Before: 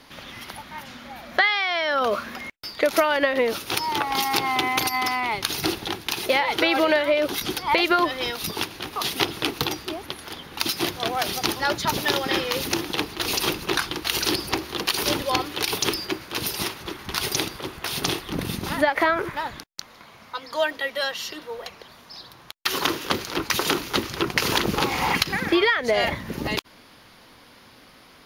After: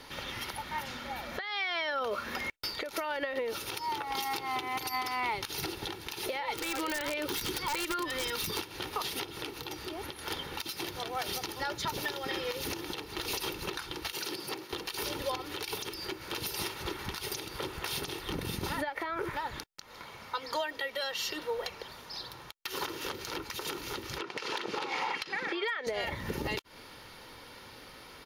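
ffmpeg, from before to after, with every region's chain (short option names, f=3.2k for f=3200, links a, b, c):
-filter_complex "[0:a]asettb=1/sr,asplit=3[a][b][c];[a]atrim=end=6.544[d];[b]atrim=start=6.54:end=8.58,asetpts=PTS-STARTPTS,afade=t=in:d=0.004:c=qsin,afade=t=out:st=2.036:d=0.004:c=qsin,equalizer=f=670:w=3.5:g=-12.5,acompressor=threshold=-29dB:ratio=6:attack=3.2:release=140:knee=1:detection=peak,aeval=exprs='(mod(15.8*val(0)+1,2)-1)/15.8':c=same[e];[c]atrim=start=8.576[f];[d][e]acrossfade=d=0.004:c1=hsin:c2=qsin[g];[g][f]acrossfade=d=0.004:c1=qsin:c2=hsin,asettb=1/sr,asplit=3[h][i][j];[h]atrim=end=14.124[k];[i]atrim=start=14.12:end=14.73,asetpts=PTS-STARTPTS,afade=t=in:d=0.004:c=qsin,afade=t=out:st=0.606:d=0.004:c=qsin,highpass=f=130:w=0.5412,highpass=f=130:w=1.3066,agate=range=-33dB:threshold=-33dB:ratio=3:release=100:detection=peak[l];[j]atrim=start=14.726[m];[k][l]acrossfade=d=0.004:c1=hsin:c2=qsin[n];[n][m]acrossfade=d=0.004:c1=qsin:c2=hsin,asettb=1/sr,asplit=3[o][p][q];[o]atrim=end=24.184[r];[p]atrim=start=24.18:end=25.87,asetpts=PTS-STARTPTS,afade=t=in:d=0.004:c=qsin,afade=t=out:st=1.686:d=0.004:c=qsin,highpass=250,lowpass=4.8k,lowshelf=f=420:g=-5.5,volume=11.5dB,asoftclip=hard,volume=-11.5dB[s];[q]atrim=start=25.866[t];[r][s]acrossfade=d=0.004:c1=hsin:c2=qsin[u];[u][t]acrossfade=d=0.004:c1=qsin:c2=hsin,aecho=1:1:2.2:0.37,acompressor=threshold=-29dB:ratio=6,alimiter=limit=-23dB:level=0:latency=1:release=182"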